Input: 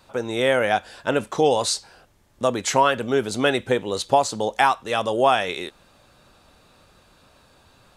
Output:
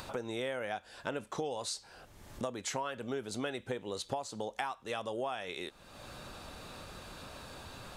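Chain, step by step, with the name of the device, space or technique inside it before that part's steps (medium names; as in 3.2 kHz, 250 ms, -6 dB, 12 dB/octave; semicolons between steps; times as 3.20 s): upward and downward compression (upward compressor, threshold -33 dBFS; compression 5:1, threshold -32 dBFS, peak gain reduction 17.5 dB); trim -3.5 dB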